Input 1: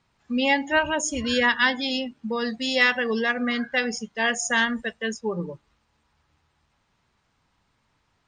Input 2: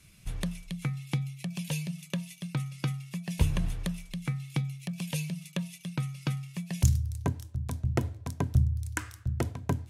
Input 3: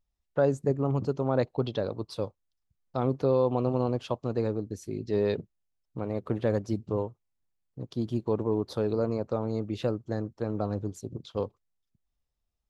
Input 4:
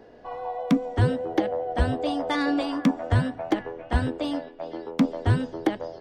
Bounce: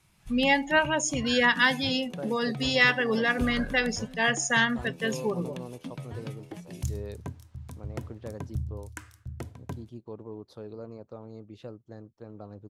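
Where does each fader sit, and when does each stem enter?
−1.5, −8.5, −13.5, −19.5 decibels; 0.00, 0.00, 1.80, 0.85 seconds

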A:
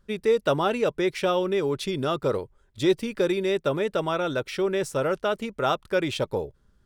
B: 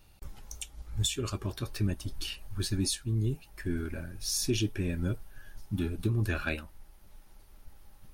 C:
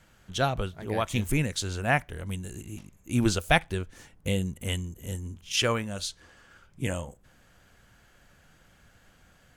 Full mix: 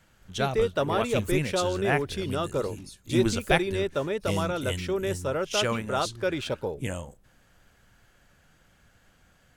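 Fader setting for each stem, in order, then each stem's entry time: −3.5, −15.5, −2.0 decibels; 0.30, 0.00, 0.00 seconds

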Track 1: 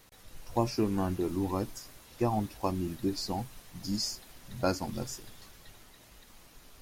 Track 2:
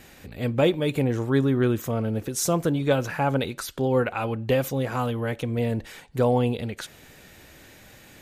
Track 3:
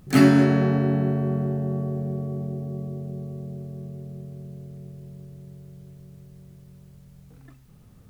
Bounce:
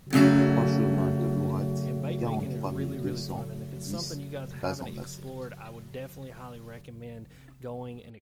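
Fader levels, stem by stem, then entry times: −3.5, −17.0, −3.5 decibels; 0.00, 1.45, 0.00 seconds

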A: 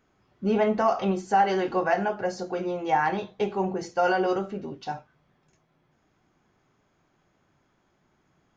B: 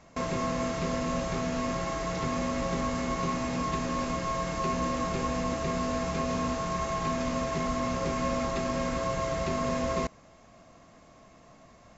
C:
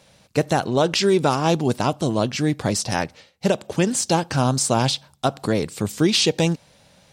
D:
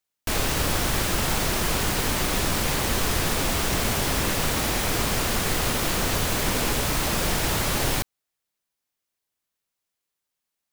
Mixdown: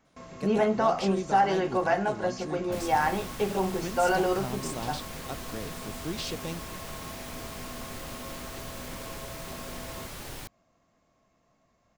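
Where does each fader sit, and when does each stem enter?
−1.5, −14.5, −17.5, −16.5 decibels; 0.00, 0.00, 0.05, 2.45 seconds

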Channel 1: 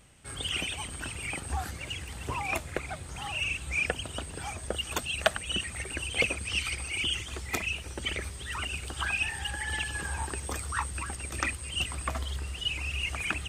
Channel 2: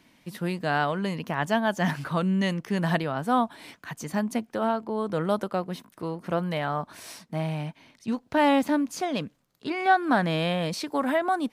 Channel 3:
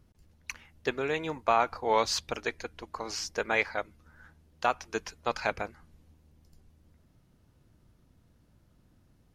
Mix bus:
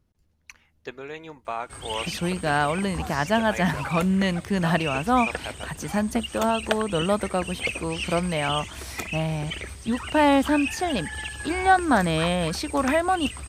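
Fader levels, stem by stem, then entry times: −1.0, +2.5, −6.5 decibels; 1.45, 1.80, 0.00 seconds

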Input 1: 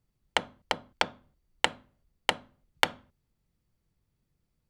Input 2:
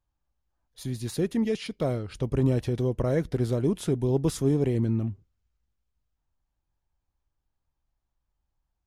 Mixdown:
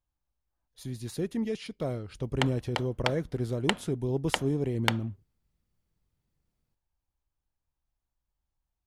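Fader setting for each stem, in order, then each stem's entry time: −3.0, −5.0 decibels; 2.05, 0.00 seconds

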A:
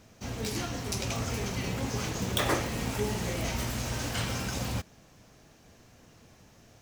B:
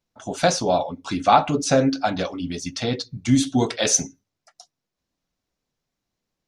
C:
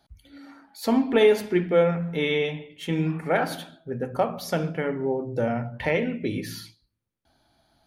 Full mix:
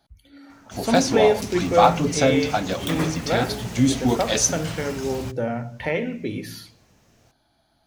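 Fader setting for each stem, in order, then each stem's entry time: −1.5, −1.0, −0.5 decibels; 0.50, 0.50, 0.00 seconds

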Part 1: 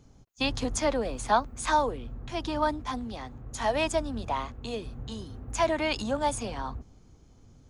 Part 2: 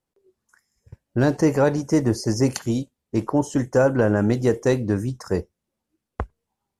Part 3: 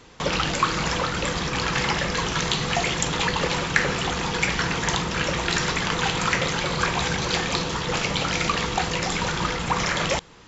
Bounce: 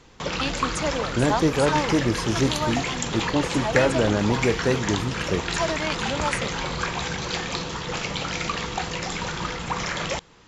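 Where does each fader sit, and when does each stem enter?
−1.0, −3.0, −4.0 decibels; 0.00, 0.00, 0.00 seconds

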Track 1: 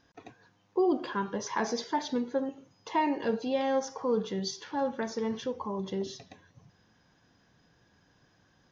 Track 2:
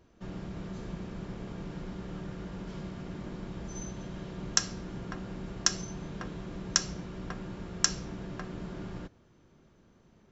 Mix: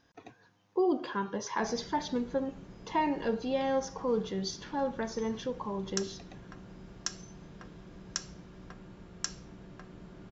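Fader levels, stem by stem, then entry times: −1.5, −9.5 decibels; 0.00, 1.40 seconds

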